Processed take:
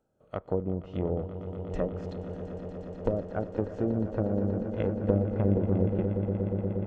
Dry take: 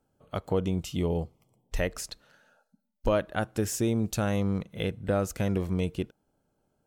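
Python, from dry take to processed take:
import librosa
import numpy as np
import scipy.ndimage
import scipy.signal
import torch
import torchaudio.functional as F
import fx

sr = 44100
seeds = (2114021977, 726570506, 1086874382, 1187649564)

p1 = fx.bin_compress(x, sr, power=0.6)
p2 = fx.cheby_harmonics(p1, sr, harmonics=(2, 3, 5, 7), levels_db=(-11, -15, -19, -24), full_scale_db=-9.0)
p3 = fx.low_shelf(p2, sr, hz=430.0, db=-4.5)
p4 = fx.env_lowpass_down(p3, sr, base_hz=500.0, full_db=-23.0)
p5 = p4 + fx.echo_swell(p4, sr, ms=119, loudest=8, wet_db=-11.5, dry=0)
y = fx.spectral_expand(p5, sr, expansion=1.5)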